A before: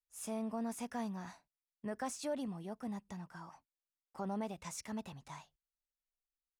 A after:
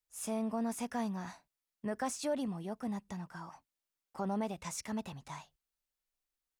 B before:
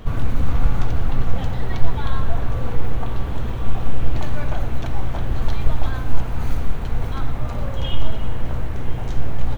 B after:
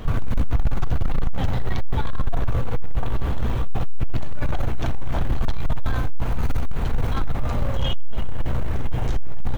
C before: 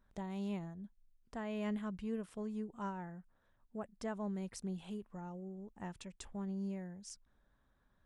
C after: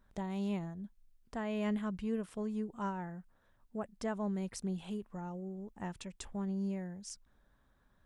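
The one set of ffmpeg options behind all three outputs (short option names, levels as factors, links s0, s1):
-af "asoftclip=type=tanh:threshold=0.158,volume=1.58"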